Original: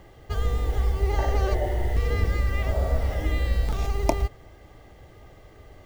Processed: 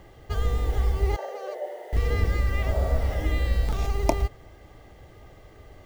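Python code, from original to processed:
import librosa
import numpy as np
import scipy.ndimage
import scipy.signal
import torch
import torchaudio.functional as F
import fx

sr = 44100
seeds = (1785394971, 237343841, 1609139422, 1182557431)

y = fx.ladder_highpass(x, sr, hz=460.0, resonance_pct=60, at=(1.16, 1.93))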